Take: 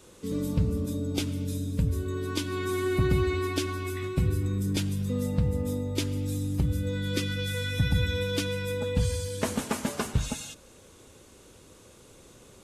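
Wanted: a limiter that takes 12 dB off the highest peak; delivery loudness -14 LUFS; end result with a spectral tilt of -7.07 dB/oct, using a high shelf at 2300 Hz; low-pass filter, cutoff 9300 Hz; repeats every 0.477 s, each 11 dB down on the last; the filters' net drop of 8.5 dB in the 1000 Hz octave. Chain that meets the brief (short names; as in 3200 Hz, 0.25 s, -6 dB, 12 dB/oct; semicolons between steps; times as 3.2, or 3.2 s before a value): LPF 9300 Hz; bell 1000 Hz -8.5 dB; high shelf 2300 Hz -8.5 dB; limiter -26.5 dBFS; feedback echo 0.477 s, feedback 28%, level -11 dB; gain +21 dB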